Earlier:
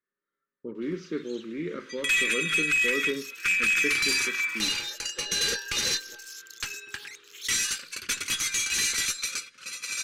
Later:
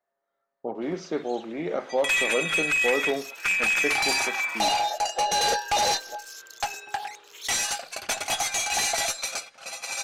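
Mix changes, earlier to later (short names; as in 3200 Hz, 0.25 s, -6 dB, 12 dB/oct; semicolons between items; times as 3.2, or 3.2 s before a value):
speech: add high shelf 4100 Hz +11 dB; master: remove Butterworth band-stop 730 Hz, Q 0.8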